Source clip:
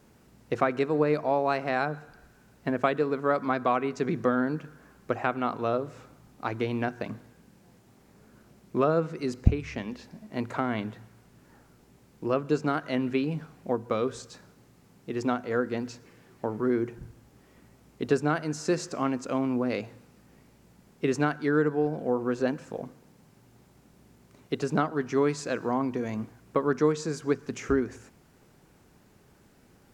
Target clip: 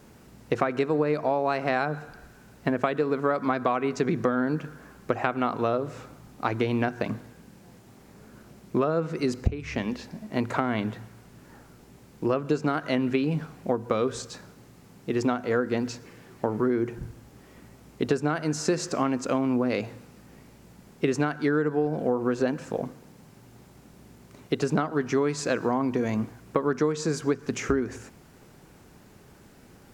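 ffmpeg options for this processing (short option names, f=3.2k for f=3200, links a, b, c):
-af "acompressor=threshold=-27dB:ratio=6,volume=6.5dB"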